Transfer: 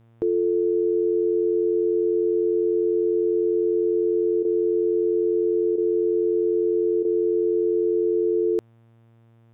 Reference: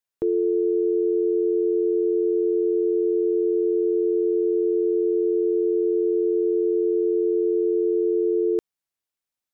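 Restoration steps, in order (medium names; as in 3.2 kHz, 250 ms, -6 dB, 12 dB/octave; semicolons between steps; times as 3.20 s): de-hum 115 Hz, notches 32; interpolate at 4.43/5.76/7.03 s, 18 ms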